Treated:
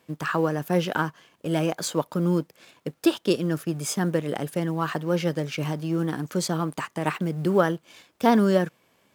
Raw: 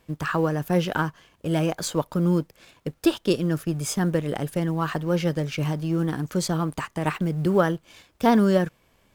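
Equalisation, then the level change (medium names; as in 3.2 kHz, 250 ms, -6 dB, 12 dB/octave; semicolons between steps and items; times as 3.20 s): high-pass 160 Hz 12 dB/octave; 0.0 dB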